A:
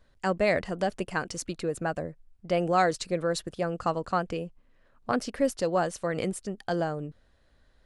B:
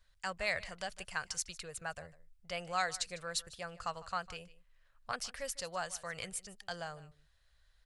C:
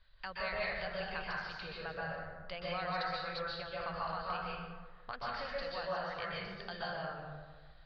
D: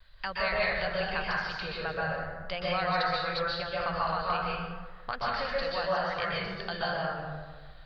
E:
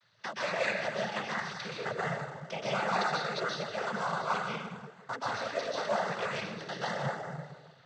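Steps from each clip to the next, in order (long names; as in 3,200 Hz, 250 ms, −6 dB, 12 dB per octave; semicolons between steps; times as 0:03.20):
guitar amp tone stack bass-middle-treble 10-0-10; single-tap delay 152 ms −19 dB
downward compressor 2 to 1, threshold −51 dBFS, peak gain reduction 12.5 dB; Chebyshev low-pass filter 4,700 Hz, order 6; dense smooth reverb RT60 1.5 s, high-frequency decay 0.45×, pre-delay 115 ms, DRR −6 dB; level +4 dB
pitch vibrato 0.86 Hz 29 cents; level +8.5 dB
in parallel at −9.5 dB: sample-and-hold swept by an LFO 13× 0.93 Hz; on the sum: cochlear-implant simulation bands 16; level −3.5 dB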